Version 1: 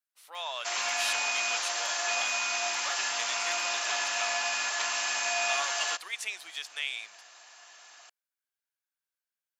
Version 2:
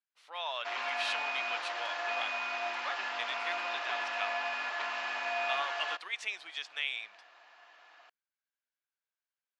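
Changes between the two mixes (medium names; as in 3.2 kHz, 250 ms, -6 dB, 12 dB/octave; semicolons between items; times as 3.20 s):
speech: add low-pass 4 kHz 12 dB/octave; background: add distance through air 370 m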